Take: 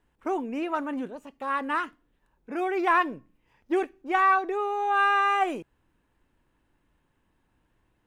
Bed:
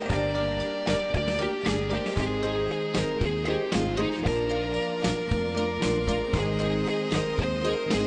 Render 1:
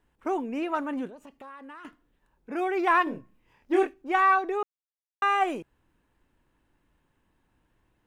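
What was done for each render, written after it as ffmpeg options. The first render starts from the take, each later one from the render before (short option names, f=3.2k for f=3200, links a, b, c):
-filter_complex "[0:a]asettb=1/sr,asplit=3[a][b][c];[a]atrim=end=1.094[d];[b]atrim=start=1.09:end=1.85,asetpts=PTS-STARTPTS,afade=t=in:d=0.004:c=qsin,afade=t=out:st=0.756:d=0.004:c=qsin,acompressor=threshold=-42dB:ratio=8:attack=3.2:release=140:knee=1:detection=peak[e];[c]atrim=start=1.846[f];[d][e]acrossfade=d=0.004:c1=hsin:c2=qsin[g];[g][f]acrossfade=d=0.004:c1=qsin:c2=hsin,asettb=1/sr,asplit=3[h][i][j];[h]atrim=end=3.044[k];[i]atrim=start=3.04:end=3.94,asetpts=PTS-STARTPTS,afade=t=in:d=0.004:c=qsin,afade=t=out:st=0.896:d=0.004:c=qsin,asplit=2[l][m];[m]adelay=26,volume=-3dB[n];[l][n]amix=inputs=2:normalize=0,atrim=end_sample=39690[o];[j]atrim=start=3.936[p];[k][o]acrossfade=d=0.004:c1=hsin:c2=qsin[q];[q][p]acrossfade=d=0.004:c1=qsin:c2=hsin,asplit=3[r][s][t];[r]atrim=end=4.63,asetpts=PTS-STARTPTS,afade=t=out:st=4.626:d=0.004:c=hsin[u];[s]atrim=start=4.63:end=5.22,asetpts=PTS-STARTPTS,volume=0[v];[t]atrim=start=5.22,asetpts=PTS-STARTPTS,afade=t=in:d=0.004:c=hsin[w];[u][v][w]concat=n=3:v=0:a=1"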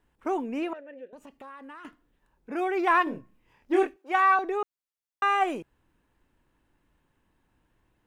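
-filter_complex "[0:a]asettb=1/sr,asplit=3[a][b][c];[a]atrim=end=0.734[d];[b]atrim=start=0.73:end=1.13,asetpts=PTS-STARTPTS,afade=t=in:d=0.004:c=qsin,afade=t=out:st=0.396:d=0.004:c=qsin,asplit=3[e][f][g];[e]bandpass=f=530:t=q:w=8,volume=0dB[h];[f]bandpass=f=1.84k:t=q:w=8,volume=-6dB[i];[g]bandpass=f=2.48k:t=q:w=8,volume=-9dB[j];[h][i][j]amix=inputs=3:normalize=0[k];[c]atrim=start=1.126[l];[d][k]acrossfade=d=0.004:c1=hsin:c2=qsin[m];[m][l]acrossfade=d=0.004:c1=qsin:c2=hsin,asettb=1/sr,asplit=3[n][o][p];[n]atrim=end=3.964[q];[o]atrim=start=3.96:end=4.39,asetpts=PTS-STARTPTS,afade=t=in:d=0.004:c=qsin,afade=t=out:st=0.426:d=0.004:c=qsin,highpass=f=390:w=0.5412,highpass=f=390:w=1.3066[r];[p]atrim=start=4.386[s];[q][r]acrossfade=d=0.004:c1=hsin:c2=qsin[t];[t][s]acrossfade=d=0.004:c1=qsin:c2=hsin"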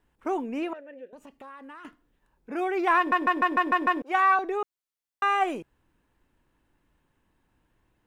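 -filter_complex "[0:a]asplit=8[a][b][c][d][e][f][g][h];[a]atrim=end=3.122[i];[b]atrim=start=2.968:end=3.122[j];[c]atrim=start=2.968:end=3.122[k];[d]atrim=start=2.968:end=3.122[l];[e]atrim=start=2.968:end=3.122[m];[f]atrim=start=2.968:end=3.122[n];[g]atrim=start=2.968:end=3.122[o];[h]atrim=start=4.018[p];[i][j]acrossfade=d=0.004:c1=hsin:c2=hsin[q];[q][k]acrossfade=d=0.004:c1=hsin:c2=hsin[r];[r][l]acrossfade=d=0.004:c1=hsin:c2=hsin[s];[s][m]acrossfade=d=0.004:c1=hsin:c2=hsin[t];[t][n]acrossfade=d=0.004:c1=hsin:c2=hsin[u];[u][o]acrossfade=d=0.004:c1=hsin:c2=hsin[v];[v][p]acrossfade=d=0.004:c1=hsin:c2=hsin"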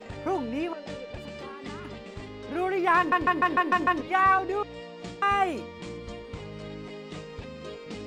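-filter_complex "[1:a]volume=-13.5dB[a];[0:a][a]amix=inputs=2:normalize=0"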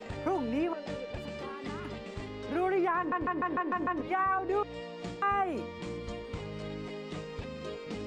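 -filter_complex "[0:a]acrossover=split=320|2000[a][b][c];[c]acompressor=threshold=-49dB:ratio=6[d];[a][b][d]amix=inputs=3:normalize=0,alimiter=limit=-21.5dB:level=0:latency=1:release=167"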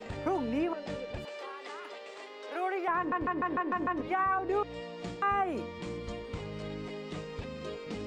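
-filter_complex "[0:a]asettb=1/sr,asplit=3[a][b][c];[a]atrim=end=1.254[d];[b]atrim=start=1.25:end=2.88,asetpts=PTS-STARTPTS,afade=t=in:d=0.004:c=qsin,afade=t=out:st=1.626:d=0.004:c=qsin,highpass=f=440:w=0.5412,highpass=f=440:w=1.3066[e];[c]atrim=start=2.876[f];[d][e]acrossfade=d=0.004:c1=hsin:c2=qsin[g];[g][f]acrossfade=d=0.004:c1=qsin:c2=hsin"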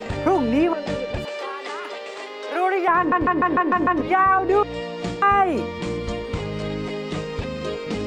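-af "volume=12dB"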